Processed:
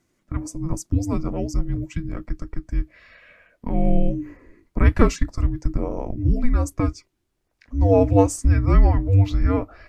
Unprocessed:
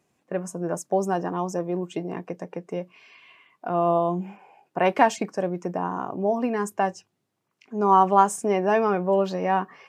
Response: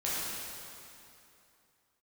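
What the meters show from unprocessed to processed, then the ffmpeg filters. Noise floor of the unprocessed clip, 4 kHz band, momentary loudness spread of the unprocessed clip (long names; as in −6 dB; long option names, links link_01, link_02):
−77 dBFS, −1.0 dB, 15 LU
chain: -af "afreqshift=-490,asubboost=boost=5.5:cutoff=65,volume=2dB"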